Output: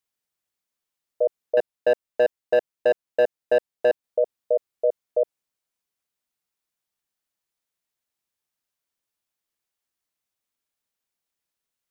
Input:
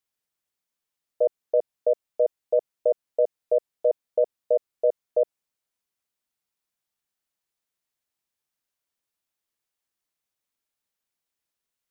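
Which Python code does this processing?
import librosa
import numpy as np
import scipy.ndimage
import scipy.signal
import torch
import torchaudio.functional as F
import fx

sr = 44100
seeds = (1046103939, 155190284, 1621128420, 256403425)

y = fx.leveller(x, sr, passes=2, at=(1.57, 4.04))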